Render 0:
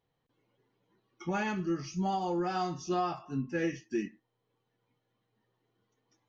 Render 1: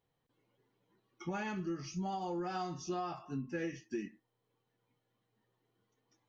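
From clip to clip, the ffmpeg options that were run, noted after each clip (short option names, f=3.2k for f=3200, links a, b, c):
-af "acompressor=threshold=-33dB:ratio=4,volume=-2dB"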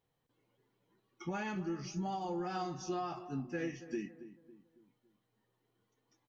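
-filter_complex "[0:a]asplit=2[a][b];[b]adelay=277,lowpass=f=1.2k:p=1,volume=-13dB,asplit=2[c][d];[d]adelay=277,lowpass=f=1.2k:p=1,volume=0.44,asplit=2[e][f];[f]adelay=277,lowpass=f=1.2k:p=1,volume=0.44,asplit=2[g][h];[h]adelay=277,lowpass=f=1.2k:p=1,volume=0.44[i];[a][c][e][g][i]amix=inputs=5:normalize=0"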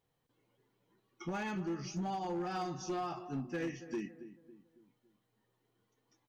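-af "asoftclip=type=hard:threshold=-33dB,volume=1dB"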